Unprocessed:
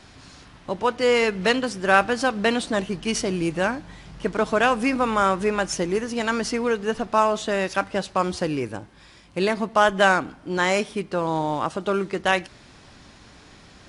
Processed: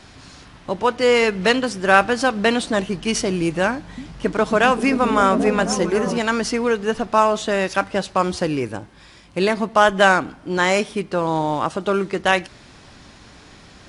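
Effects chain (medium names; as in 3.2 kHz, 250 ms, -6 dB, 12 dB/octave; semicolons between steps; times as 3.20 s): 3.71–6.18 s: repeats whose band climbs or falls 263 ms, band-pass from 180 Hz, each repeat 0.7 oct, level -1 dB; trim +3.5 dB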